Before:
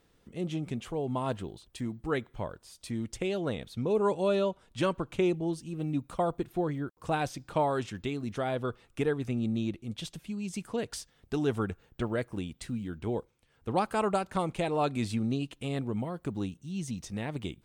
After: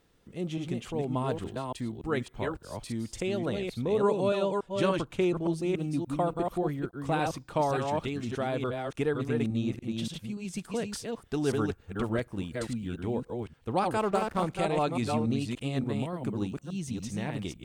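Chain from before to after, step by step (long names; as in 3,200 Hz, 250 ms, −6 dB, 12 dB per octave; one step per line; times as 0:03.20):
delay that plays each chunk backwards 288 ms, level −3.5 dB
0:13.99–0:14.44: slack as between gear wheels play −38 dBFS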